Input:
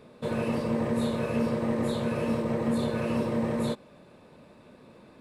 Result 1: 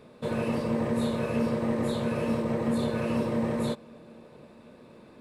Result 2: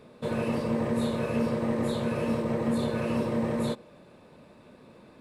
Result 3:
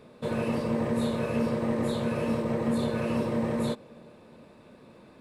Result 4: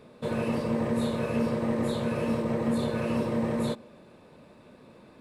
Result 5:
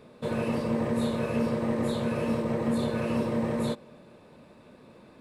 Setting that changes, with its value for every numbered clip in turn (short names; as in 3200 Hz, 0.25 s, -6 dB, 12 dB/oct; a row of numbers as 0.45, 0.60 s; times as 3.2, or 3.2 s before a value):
narrowing echo, time: 734, 94, 370, 141, 227 ms